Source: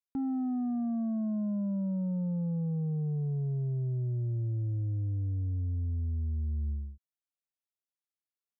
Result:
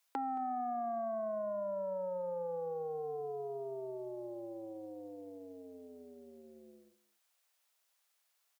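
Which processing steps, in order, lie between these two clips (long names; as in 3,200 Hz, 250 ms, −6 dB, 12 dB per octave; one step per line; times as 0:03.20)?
high-pass filter 540 Hz 24 dB per octave
downward compressor 3 to 1, threshold −55 dBFS, peak gain reduction 6.5 dB
single-tap delay 222 ms −18.5 dB
level +18 dB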